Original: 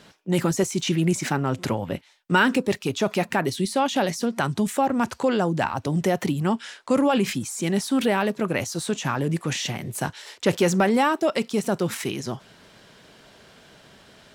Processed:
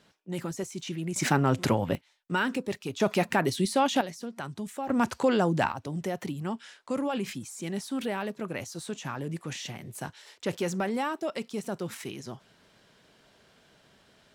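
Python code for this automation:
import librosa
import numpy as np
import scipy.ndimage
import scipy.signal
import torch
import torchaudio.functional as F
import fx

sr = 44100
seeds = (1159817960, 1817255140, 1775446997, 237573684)

y = fx.gain(x, sr, db=fx.steps((0.0, -12.0), (1.16, 0.5), (1.95, -9.0), (3.0, -2.0), (4.01, -13.0), (4.88, -2.0), (5.72, -10.0)))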